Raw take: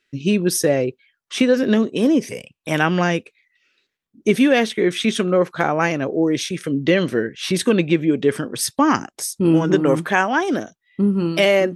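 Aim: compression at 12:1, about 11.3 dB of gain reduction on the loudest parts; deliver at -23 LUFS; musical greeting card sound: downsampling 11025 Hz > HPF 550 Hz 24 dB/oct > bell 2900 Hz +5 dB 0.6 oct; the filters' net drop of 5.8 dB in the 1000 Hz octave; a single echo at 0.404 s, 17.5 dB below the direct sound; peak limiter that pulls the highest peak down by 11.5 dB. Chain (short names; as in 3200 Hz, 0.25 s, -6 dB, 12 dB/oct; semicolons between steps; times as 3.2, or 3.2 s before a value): bell 1000 Hz -8 dB; compressor 12:1, threshold -23 dBFS; limiter -22.5 dBFS; echo 0.404 s -17.5 dB; downsampling 11025 Hz; HPF 550 Hz 24 dB/oct; bell 2900 Hz +5 dB 0.6 oct; gain +13.5 dB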